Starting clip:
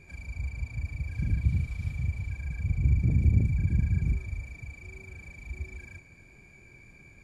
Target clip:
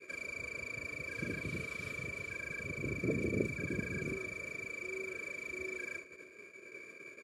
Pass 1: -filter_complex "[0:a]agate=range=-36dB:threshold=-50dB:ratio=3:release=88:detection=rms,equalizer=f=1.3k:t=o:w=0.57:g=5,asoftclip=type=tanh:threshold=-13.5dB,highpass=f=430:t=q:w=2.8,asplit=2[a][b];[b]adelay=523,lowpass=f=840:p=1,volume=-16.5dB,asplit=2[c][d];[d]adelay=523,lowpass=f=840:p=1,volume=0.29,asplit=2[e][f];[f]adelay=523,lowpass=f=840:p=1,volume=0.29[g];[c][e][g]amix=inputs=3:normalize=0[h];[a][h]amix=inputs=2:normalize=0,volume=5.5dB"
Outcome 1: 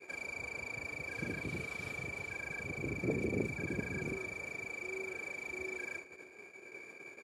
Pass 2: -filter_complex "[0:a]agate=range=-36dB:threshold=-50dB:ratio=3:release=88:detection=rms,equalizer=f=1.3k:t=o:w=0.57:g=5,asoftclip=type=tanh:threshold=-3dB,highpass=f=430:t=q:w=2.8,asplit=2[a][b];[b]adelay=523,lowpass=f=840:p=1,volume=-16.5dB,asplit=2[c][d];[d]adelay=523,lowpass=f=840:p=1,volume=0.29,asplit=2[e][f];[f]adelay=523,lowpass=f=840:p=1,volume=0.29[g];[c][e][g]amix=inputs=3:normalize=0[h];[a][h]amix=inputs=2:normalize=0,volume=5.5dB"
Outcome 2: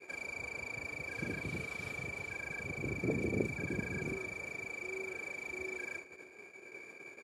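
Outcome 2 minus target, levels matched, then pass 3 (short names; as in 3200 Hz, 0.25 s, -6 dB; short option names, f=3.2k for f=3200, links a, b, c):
1000 Hz band +4.5 dB
-filter_complex "[0:a]agate=range=-36dB:threshold=-50dB:ratio=3:release=88:detection=rms,asuperstop=centerf=820:order=8:qfactor=2.4,equalizer=f=1.3k:t=o:w=0.57:g=5,asoftclip=type=tanh:threshold=-3dB,highpass=f=430:t=q:w=2.8,asplit=2[a][b];[b]adelay=523,lowpass=f=840:p=1,volume=-16.5dB,asplit=2[c][d];[d]adelay=523,lowpass=f=840:p=1,volume=0.29,asplit=2[e][f];[f]adelay=523,lowpass=f=840:p=1,volume=0.29[g];[c][e][g]amix=inputs=3:normalize=0[h];[a][h]amix=inputs=2:normalize=0,volume=5.5dB"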